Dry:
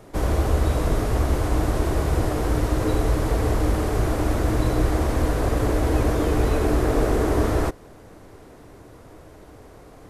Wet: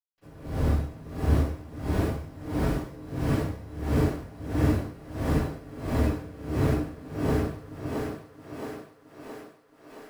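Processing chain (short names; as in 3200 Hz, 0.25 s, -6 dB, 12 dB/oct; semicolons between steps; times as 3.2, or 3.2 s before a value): octaver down 1 oct, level -1 dB; HPF 87 Hz 12 dB/oct; limiter -16 dBFS, peak gain reduction 7 dB; requantised 6-bit, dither none; flange 0.38 Hz, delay 4.7 ms, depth 9.4 ms, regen -49%; thinning echo 0.67 s, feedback 66%, high-pass 230 Hz, level -3.5 dB; reverb RT60 0.60 s, pre-delay 76 ms; dB-linear tremolo 1.5 Hz, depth 21 dB; gain +2 dB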